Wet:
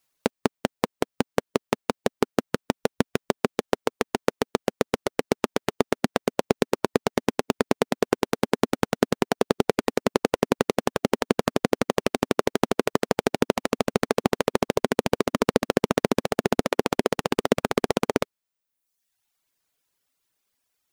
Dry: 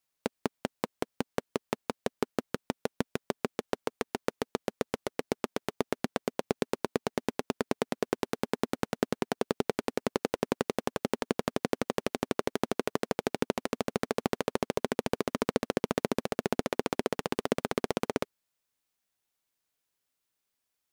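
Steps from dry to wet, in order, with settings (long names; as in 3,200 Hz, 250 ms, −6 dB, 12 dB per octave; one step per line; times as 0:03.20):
reverb reduction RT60 0.96 s
level +8.5 dB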